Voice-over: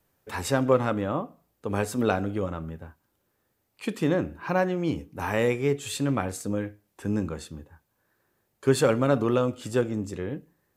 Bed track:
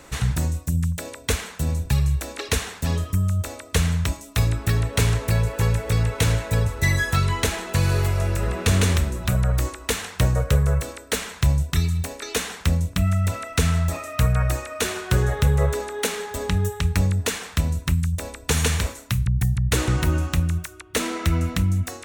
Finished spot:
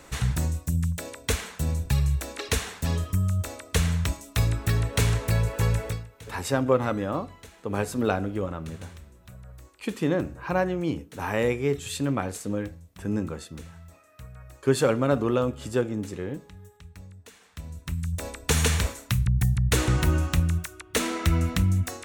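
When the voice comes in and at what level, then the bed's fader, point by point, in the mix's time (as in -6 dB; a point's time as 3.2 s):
6.00 s, -0.5 dB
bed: 5.86 s -3 dB
6.09 s -25 dB
17.3 s -25 dB
18.27 s -1.5 dB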